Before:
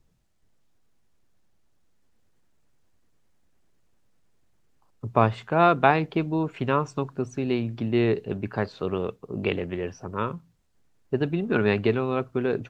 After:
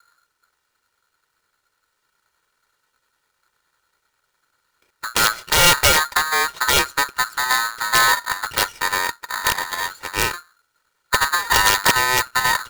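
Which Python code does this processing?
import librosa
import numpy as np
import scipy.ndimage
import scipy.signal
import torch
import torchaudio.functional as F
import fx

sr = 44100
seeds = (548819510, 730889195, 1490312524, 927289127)

y = fx.lower_of_two(x, sr, delay_ms=2.1)
y = (np.mod(10.0 ** (13.5 / 20.0) * y + 1.0, 2.0) - 1.0) / 10.0 ** (13.5 / 20.0)
y = y * np.sign(np.sin(2.0 * np.pi * 1400.0 * np.arange(len(y)) / sr))
y = F.gain(torch.from_numpy(y), 7.0).numpy()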